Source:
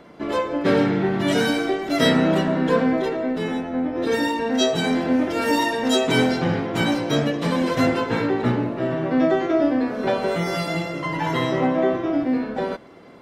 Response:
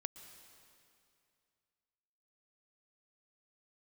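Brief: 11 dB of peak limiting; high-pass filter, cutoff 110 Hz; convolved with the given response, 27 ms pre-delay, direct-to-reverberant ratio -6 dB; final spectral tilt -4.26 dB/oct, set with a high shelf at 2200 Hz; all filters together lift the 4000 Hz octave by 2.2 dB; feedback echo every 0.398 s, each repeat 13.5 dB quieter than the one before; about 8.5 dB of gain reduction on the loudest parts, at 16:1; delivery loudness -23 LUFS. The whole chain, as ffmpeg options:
-filter_complex "[0:a]highpass=110,highshelf=f=2.2k:g=-5.5,equalizer=f=4k:t=o:g=7.5,acompressor=threshold=-22dB:ratio=16,alimiter=limit=-24dB:level=0:latency=1,aecho=1:1:398|796:0.211|0.0444,asplit=2[a][b];[1:a]atrim=start_sample=2205,adelay=27[c];[b][c]afir=irnorm=-1:irlink=0,volume=9dB[d];[a][d]amix=inputs=2:normalize=0,volume=1.5dB"

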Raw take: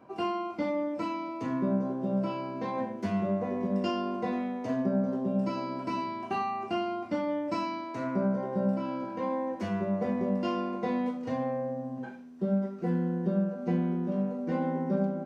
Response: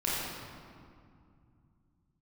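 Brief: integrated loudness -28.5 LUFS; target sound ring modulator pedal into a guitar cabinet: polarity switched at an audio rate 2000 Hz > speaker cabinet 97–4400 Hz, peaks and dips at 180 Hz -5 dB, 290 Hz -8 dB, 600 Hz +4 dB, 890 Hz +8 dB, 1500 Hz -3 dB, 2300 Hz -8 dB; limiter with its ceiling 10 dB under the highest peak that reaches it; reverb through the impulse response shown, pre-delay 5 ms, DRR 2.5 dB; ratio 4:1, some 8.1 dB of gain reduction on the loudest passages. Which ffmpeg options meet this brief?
-filter_complex "[0:a]acompressor=threshold=-33dB:ratio=4,alimiter=level_in=9.5dB:limit=-24dB:level=0:latency=1,volume=-9.5dB,asplit=2[a][b];[1:a]atrim=start_sample=2205,adelay=5[c];[b][c]afir=irnorm=-1:irlink=0,volume=-11.5dB[d];[a][d]amix=inputs=2:normalize=0,aeval=exprs='val(0)*sgn(sin(2*PI*2000*n/s))':c=same,highpass=97,equalizer=f=180:t=q:w=4:g=-5,equalizer=f=290:t=q:w=4:g=-8,equalizer=f=600:t=q:w=4:g=4,equalizer=f=890:t=q:w=4:g=8,equalizer=f=1.5k:t=q:w=4:g=-3,equalizer=f=2.3k:t=q:w=4:g=-8,lowpass=f=4.4k:w=0.5412,lowpass=f=4.4k:w=1.3066,volume=11dB"

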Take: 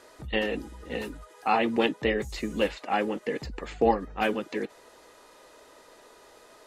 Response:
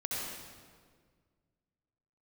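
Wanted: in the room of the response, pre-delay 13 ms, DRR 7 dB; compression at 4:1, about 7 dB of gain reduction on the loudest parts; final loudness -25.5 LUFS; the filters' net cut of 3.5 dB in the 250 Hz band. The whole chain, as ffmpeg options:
-filter_complex "[0:a]equalizer=f=250:t=o:g=-4.5,acompressor=threshold=-27dB:ratio=4,asplit=2[a][b];[1:a]atrim=start_sample=2205,adelay=13[c];[b][c]afir=irnorm=-1:irlink=0,volume=-11.5dB[d];[a][d]amix=inputs=2:normalize=0,volume=7.5dB"

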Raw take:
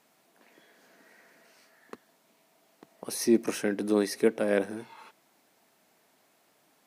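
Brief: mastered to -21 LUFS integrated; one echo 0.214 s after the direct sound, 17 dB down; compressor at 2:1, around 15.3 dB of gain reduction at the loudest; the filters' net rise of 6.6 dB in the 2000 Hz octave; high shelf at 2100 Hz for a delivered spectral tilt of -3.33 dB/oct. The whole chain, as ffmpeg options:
-af "equalizer=f=2k:t=o:g=5,highshelf=f=2.1k:g=6.5,acompressor=threshold=-46dB:ratio=2,aecho=1:1:214:0.141,volume=21.5dB"

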